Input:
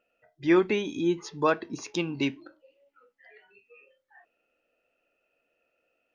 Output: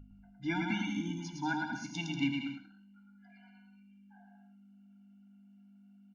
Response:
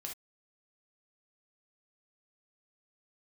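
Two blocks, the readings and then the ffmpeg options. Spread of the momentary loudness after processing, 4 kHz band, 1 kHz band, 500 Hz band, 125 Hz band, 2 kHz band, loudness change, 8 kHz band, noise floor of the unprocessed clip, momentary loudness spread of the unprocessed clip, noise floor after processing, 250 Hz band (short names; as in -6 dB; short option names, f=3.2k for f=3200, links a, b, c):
7 LU, -4.0 dB, -7.0 dB, -22.0 dB, -2.0 dB, -3.5 dB, -8.5 dB, n/a, -78 dBFS, 9 LU, -59 dBFS, -6.5 dB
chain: -filter_complex "[0:a]asplit=2[a][b];[1:a]atrim=start_sample=2205,asetrate=26901,aresample=44100[c];[b][c]afir=irnorm=-1:irlink=0,volume=-8.5dB[d];[a][d]amix=inputs=2:normalize=0,aeval=exprs='val(0)+0.00794*(sin(2*PI*50*n/s)+sin(2*PI*2*50*n/s)/2+sin(2*PI*3*50*n/s)/3+sin(2*PI*4*50*n/s)/4+sin(2*PI*5*50*n/s)/5)':c=same,bandreject=f=50:t=h:w=6,bandreject=f=100:t=h:w=6,bandreject=f=150:t=h:w=6,aecho=1:1:110|187|240.9|278.6|305:0.631|0.398|0.251|0.158|0.1,afftfilt=real='re*eq(mod(floor(b*sr/1024/340),2),0)':imag='im*eq(mod(floor(b*sr/1024/340),2),0)':win_size=1024:overlap=0.75,volume=-6dB"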